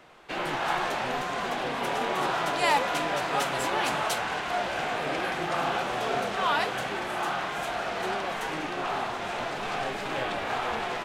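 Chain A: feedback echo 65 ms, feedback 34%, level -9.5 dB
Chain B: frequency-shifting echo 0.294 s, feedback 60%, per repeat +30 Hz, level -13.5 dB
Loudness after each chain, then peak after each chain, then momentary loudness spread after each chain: -28.5, -28.5 LUFS; -11.5, -11.5 dBFS; 5, 5 LU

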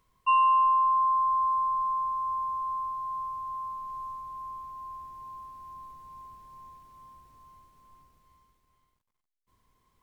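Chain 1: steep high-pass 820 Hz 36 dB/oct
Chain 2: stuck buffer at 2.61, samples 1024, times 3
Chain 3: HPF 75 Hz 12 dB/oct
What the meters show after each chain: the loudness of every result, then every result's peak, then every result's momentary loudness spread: -27.0, -27.0, -27.0 LUFS; -16.0, -15.5, -15.5 dBFS; 22, 22, 22 LU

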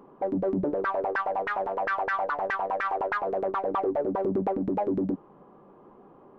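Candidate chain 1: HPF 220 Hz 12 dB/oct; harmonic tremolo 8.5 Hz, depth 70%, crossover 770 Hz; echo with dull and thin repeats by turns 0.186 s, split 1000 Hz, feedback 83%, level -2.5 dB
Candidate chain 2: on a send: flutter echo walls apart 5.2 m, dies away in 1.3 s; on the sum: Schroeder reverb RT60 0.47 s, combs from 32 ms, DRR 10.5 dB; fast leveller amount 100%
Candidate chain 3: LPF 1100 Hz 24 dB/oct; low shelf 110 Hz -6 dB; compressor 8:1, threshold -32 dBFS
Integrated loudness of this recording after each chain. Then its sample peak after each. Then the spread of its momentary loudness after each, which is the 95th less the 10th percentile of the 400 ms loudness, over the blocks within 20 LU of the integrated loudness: -30.0, -20.5, -36.0 LUFS; -16.0, -8.5, -23.5 dBFS; 7, 1, 19 LU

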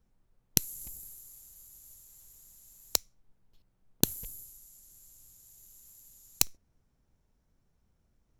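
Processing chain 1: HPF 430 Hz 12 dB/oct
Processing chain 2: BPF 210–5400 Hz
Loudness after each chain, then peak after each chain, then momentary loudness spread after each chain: -32.0, -36.5 LUFS; -1.5, -6.0 dBFS; 21, 19 LU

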